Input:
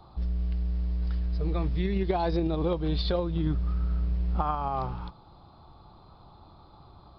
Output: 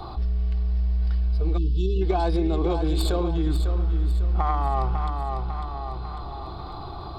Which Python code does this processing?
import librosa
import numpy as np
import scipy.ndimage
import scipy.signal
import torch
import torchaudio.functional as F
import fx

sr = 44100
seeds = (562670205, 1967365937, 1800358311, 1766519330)

y = fx.tracing_dist(x, sr, depth_ms=0.094)
y = fx.notch(y, sr, hz=1900.0, q=8.2, at=(1.18, 3.32))
y = fx.echo_feedback(y, sr, ms=549, feedback_pct=40, wet_db=-9.0)
y = fx.spec_erase(y, sr, start_s=1.57, length_s=0.45, low_hz=460.0, high_hz=2600.0)
y = fx.hum_notches(y, sr, base_hz=50, count=6)
y = y + 0.41 * np.pad(y, (int(2.7 * sr / 1000.0), 0))[:len(y)]
y = fx.env_flatten(y, sr, amount_pct=50)